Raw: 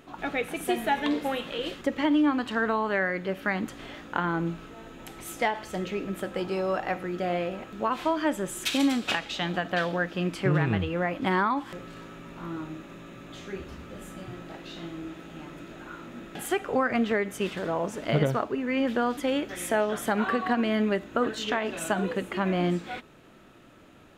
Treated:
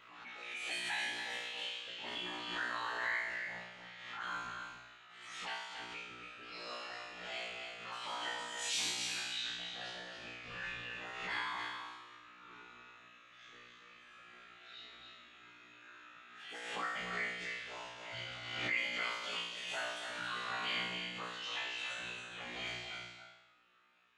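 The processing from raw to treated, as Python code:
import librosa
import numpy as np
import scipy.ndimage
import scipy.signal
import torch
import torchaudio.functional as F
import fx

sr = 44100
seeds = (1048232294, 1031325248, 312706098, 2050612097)

y = fx.hpss_only(x, sr, part='harmonic')
y = fx.weighting(y, sr, curve='ITU-R 468')
y = fx.env_lowpass(y, sr, base_hz=1600.0, full_db=-25.0)
y = fx.tone_stack(y, sr, knobs='5-5-5')
y = fx.whisperise(y, sr, seeds[0])
y = fx.comb_fb(y, sr, f0_hz=60.0, decay_s=0.91, harmonics='all', damping=0.0, mix_pct=100)
y = y + 10.0 ** (-6.0 / 20.0) * np.pad(y, (int(277 * sr / 1000.0), 0))[:len(y)]
y = fx.pre_swell(y, sr, db_per_s=44.0)
y = F.gain(torch.from_numpy(y), 14.0).numpy()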